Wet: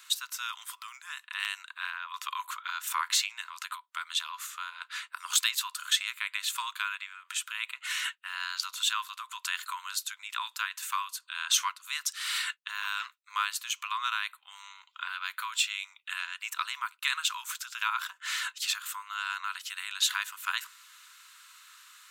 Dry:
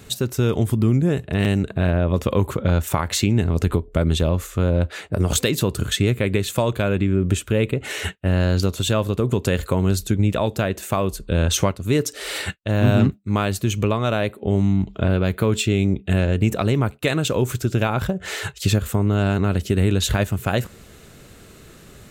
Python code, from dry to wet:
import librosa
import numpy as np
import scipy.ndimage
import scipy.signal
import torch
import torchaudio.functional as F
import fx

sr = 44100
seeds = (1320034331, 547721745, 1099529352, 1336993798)

y = scipy.signal.sosfilt(scipy.signal.cheby1(6, 3, 970.0, 'highpass', fs=sr, output='sos'), x)
y = F.gain(torch.from_numpy(y), -1.5).numpy()